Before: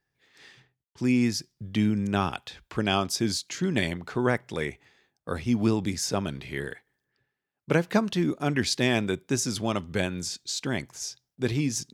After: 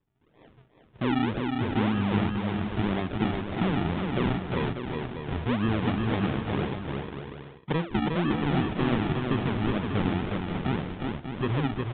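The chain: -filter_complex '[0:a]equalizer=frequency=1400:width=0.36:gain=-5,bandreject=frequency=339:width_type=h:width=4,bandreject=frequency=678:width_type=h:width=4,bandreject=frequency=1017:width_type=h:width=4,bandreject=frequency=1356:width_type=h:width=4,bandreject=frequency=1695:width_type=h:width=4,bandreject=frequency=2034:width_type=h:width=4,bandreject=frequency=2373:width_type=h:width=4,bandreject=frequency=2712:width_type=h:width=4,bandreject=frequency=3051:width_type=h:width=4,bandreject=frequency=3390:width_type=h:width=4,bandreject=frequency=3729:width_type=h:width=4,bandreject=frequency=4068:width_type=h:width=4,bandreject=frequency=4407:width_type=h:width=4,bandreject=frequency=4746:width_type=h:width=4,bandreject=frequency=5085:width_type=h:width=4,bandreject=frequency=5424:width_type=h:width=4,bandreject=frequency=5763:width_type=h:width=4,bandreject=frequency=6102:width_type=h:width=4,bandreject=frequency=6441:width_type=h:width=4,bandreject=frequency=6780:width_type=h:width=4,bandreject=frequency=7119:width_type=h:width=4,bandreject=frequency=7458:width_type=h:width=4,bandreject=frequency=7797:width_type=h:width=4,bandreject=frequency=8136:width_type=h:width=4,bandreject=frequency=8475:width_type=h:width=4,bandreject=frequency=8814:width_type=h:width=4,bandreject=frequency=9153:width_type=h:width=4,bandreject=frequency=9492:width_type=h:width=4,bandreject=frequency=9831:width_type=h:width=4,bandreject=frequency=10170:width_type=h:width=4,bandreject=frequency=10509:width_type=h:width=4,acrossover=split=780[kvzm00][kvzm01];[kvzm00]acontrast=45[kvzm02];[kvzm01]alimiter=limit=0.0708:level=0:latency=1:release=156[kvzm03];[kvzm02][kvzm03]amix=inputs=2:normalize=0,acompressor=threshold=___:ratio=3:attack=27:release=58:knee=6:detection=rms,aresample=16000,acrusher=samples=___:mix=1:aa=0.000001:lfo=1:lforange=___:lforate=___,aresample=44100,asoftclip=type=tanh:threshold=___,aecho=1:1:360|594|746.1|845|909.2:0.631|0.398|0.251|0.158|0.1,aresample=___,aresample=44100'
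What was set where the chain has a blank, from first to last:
0.0562, 21, 21, 1.9, 0.133, 8000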